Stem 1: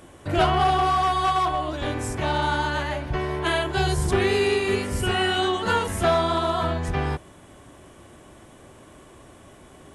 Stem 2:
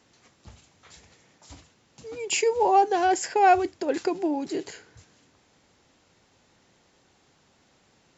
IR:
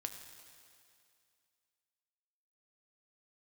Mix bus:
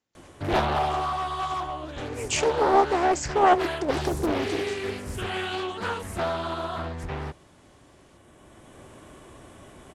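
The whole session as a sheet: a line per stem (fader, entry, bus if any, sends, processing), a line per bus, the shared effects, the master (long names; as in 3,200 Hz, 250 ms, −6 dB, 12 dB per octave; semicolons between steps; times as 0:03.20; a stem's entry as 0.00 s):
+0.5 dB, 0.15 s, no send, automatic ducking −8 dB, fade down 1.20 s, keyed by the second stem
−0.5 dB, 0.00 s, no send, no processing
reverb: not used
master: noise gate with hold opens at −46 dBFS; highs frequency-modulated by the lows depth 0.81 ms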